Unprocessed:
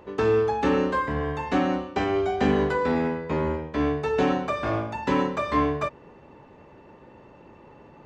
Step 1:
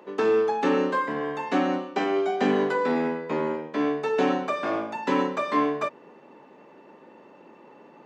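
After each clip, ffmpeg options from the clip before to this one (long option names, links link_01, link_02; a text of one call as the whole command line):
ffmpeg -i in.wav -af "highpass=frequency=200:width=0.5412,highpass=frequency=200:width=1.3066" out.wav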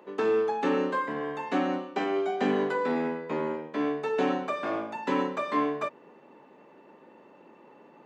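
ffmpeg -i in.wav -af "equalizer=frequency=5400:width_type=o:width=0.53:gain=-3.5,volume=-3.5dB" out.wav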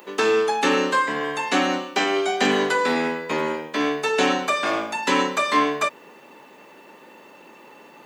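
ffmpeg -i in.wav -af "crystalizer=i=9.5:c=0,volume=3.5dB" out.wav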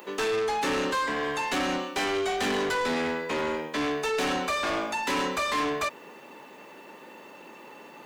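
ffmpeg -i in.wav -af "asoftclip=type=tanh:threshold=-24.5dB" out.wav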